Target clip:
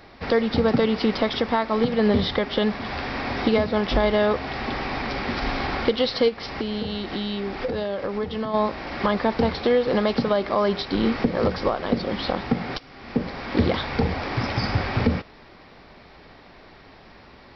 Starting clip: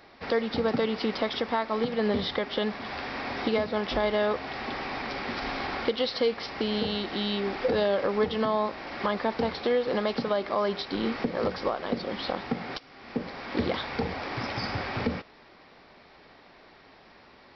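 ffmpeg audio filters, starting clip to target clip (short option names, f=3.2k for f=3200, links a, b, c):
-filter_complex "[0:a]lowshelf=f=150:g=11,asplit=3[a][b][c];[a]afade=t=out:st=6.28:d=0.02[d];[b]acompressor=threshold=-31dB:ratio=3,afade=t=in:st=6.28:d=0.02,afade=t=out:st=8.53:d=0.02[e];[c]afade=t=in:st=8.53:d=0.02[f];[d][e][f]amix=inputs=3:normalize=0,volume=4.5dB"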